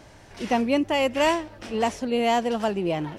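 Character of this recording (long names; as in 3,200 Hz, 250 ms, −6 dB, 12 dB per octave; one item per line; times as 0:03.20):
background noise floor −50 dBFS
spectral slope −3.0 dB per octave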